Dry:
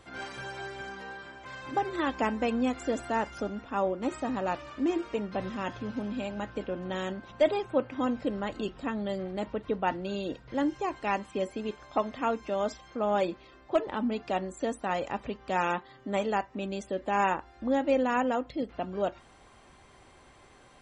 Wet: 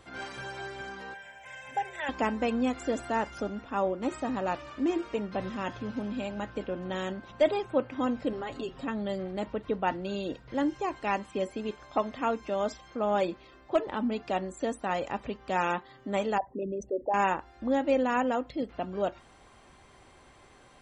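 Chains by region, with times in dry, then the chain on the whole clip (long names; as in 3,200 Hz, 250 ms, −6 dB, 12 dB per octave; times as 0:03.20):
0:01.14–0:02.09: spectral tilt +2.5 dB per octave + phaser with its sweep stopped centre 1,200 Hz, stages 6
0:08.32–0:08.88: comb filter 7.4 ms, depth 76% + downward compressor 3 to 1, threshold −32 dBFS
0:16.38–0:17.14: spectral envelope exaggerated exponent 3 + dynamic equaliser 570 Hz, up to +3 dB, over −43 dBFS, Q 2
whole clip: no processing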